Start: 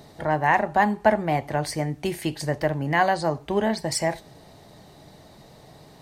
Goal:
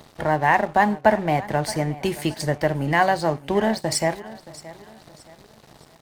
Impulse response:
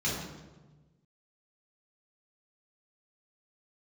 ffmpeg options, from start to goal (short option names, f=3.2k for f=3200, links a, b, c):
-filter_complex "[0:a]asplit=2[a][b];[b]acompressor=threshold=-34dB:ratio=6,volume=1dB[c];[a][c]amix=inputs=2:normalize=0,aeval=exprs='sgn(val(0))*max(abs(val(0))-0.00891,0)':c=same,aecho=1:1:623|1246|1869:0.126|0.0466|0.0172,volume=1dB"